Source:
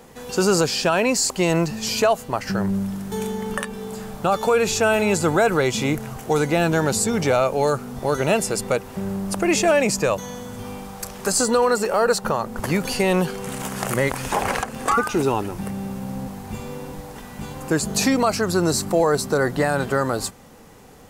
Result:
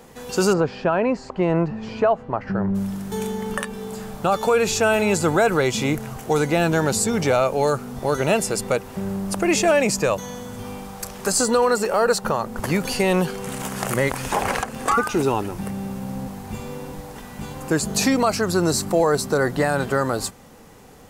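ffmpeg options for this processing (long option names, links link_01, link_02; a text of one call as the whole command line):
ffmpeg -i in.wav -filter_complex "[0:a]asplit=3[link_01][link_02][link_03];[link_01]afade=type=out:start_time=0.52:duration=0.02[link_04];[link_02]lowpass=1500,afade=type=in:start_time=0.52:duration=0.02,afade=type=out:start_time=2.74:duration=0.02[link_05];[link_03]afade=type=in:start_time=2.74:duration=0.02[link_06];[link_04][link_05][link_06]amix=inputs=3:normalize=0" out.wav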